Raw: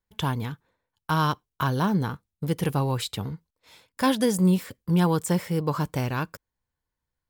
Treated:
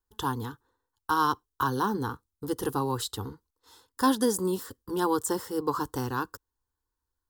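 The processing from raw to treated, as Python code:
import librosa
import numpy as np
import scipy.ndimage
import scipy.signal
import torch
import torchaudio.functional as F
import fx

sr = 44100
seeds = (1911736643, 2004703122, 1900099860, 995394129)

y = fx.fixed_phaser(x, sr, hz=620.0, stages=6)
y = y * librosa.db_to_amplitude(1.5)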